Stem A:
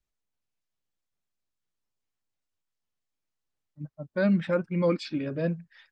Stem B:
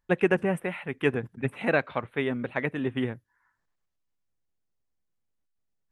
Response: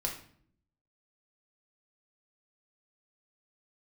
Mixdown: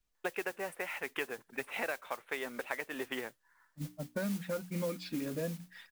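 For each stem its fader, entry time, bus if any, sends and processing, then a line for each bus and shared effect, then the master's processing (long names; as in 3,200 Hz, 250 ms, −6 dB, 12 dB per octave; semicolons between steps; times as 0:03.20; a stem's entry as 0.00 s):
+1.5 dB, 0.00 s, no send, mains-hum notches 60/120/180/240/300 Hz; comb filter 4.2 ms, depth 41%
+2.5 dB, 0.15 s, no send, high-pass filter 550 Hz 12 dB per octave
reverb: not used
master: noise that follows the level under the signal 14 dB; downward compressor 6 to 1, threshold −34 dBFS, peak gain reduction 16.5 dB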